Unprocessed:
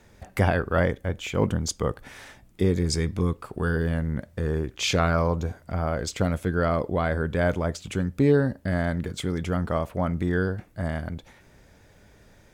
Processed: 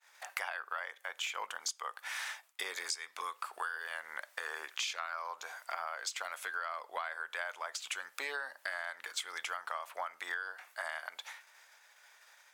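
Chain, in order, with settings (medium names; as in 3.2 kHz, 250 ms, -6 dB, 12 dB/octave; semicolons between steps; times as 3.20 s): expander -47 dBFS; high-pass 920 Hz 24 dB/octave; compression 12:1, threshold -43 dBFS, peak gain reduction 21 dB; trim +8 dB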